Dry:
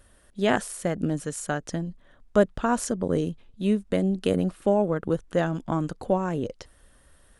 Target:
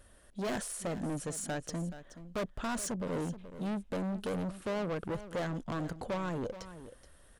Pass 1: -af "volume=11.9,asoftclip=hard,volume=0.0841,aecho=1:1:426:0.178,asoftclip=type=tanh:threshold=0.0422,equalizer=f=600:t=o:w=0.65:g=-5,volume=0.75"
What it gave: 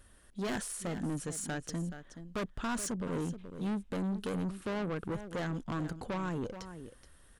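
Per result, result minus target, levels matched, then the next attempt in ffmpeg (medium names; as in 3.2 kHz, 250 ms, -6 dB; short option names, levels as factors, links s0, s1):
overload inside the chain: distortion -4 dB; 500 Hz band -2.5 dB
-af "volume=25.1,asoftclip=hard,volume=0.0398,aecho=1:1:426:0.178,asoftclip=type=tanh:threshold=0.0422,equalizer=f=600:t=o:w=0.65:g=-5,volume=0.75"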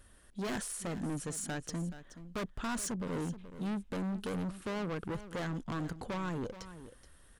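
500 Hz band -3.0 dB
-af "volume=25.1,asoftclip=hard,volume=0.0398,aecho=1:1:426:0.178,asoftclip=type=tanh:threshold=0.0422,equalizer=f=600:t=o:w=0.65:g=2,volume=0.75"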